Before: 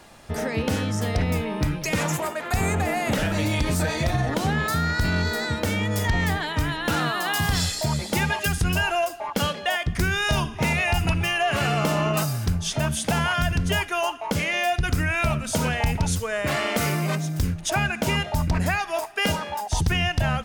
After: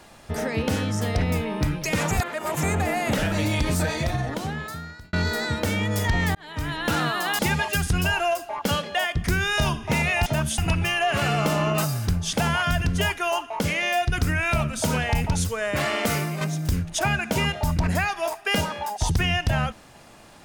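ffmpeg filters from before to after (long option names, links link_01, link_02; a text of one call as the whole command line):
ffmpeg -i in.wav -filter_complex "[0:a]asplit=10[link_01][link_02][link_03][link_04][link_05][link_06][link_07][link_08][link_09][link_10];[link_01]atrim=end=2.112[link_11];[link_02]atrim=start=2.108:end=2.632,asetpts=PTS-STARTPTS,areverse[link_12];[link_03]atrim=start=2.628:end=5.13,asetpts=PTS-STARTPTS,afade=type=out:start_time=1.182:duration=1.32[link_13];[link_04]atrim=start=5.13:end=6.35,asetpts=PTS-STARTPTS,afade=type=in:duration=0.004:curve=hsin,afade=type=out:start_time=1.216:duration=0.004:curve=hsin[link_14];[link_05]atrim=start=6.35:end=7.392,asetpts=PTS-STARTPTS,afade=type=in:duration=0.46[link_15];[link_06]atrim=start=8.098:end=10.972[link_16];[link_07]atrim=start=12.718:end=13.042[link_17];[link_08]atrim=start=10.968:end=12.722[link_18];[link_09]atrim=start=13.038:end=17.12,asetpts=PTS-STARTPTS,afade=type=out:start_time=3.772:duration=0.31:silence=0.473151[link_19];[link_10]atrim=start=17.12,asetpts=PTS-STARTPTS,afade=type=in:duration=0.004:curve=hsin:silence=0.473151[link_20];[link_11][link_12]acrossfade=duration=0.004:curve1=hsin:curve2=hsin[link_21];[link_13][link_14][link_15]concat=n=3:v=0:a=1[link_22];[link_21][link_22]acrossfade=duration=0.004:curve1=hsin:curve2=hsin[link_23];[link_23][link_16]acrossfade=duration=0.004:curve1=hsin:curve2=hsin[link_24];[link_24][link_17]acrossfade=duration=0.004:curve1=hsin:curve2=hsin[link_25];[link_25][link_18]acrossfade=duration=0.004:curve1=hsin:curve2=hsin[link_26];[link_19][link_20]concat=n=2:v=0:a=1[link_27];[link_26][link_27]acrossfade=duration=0.004:curve1=hsin:curve2=hsin" out.wav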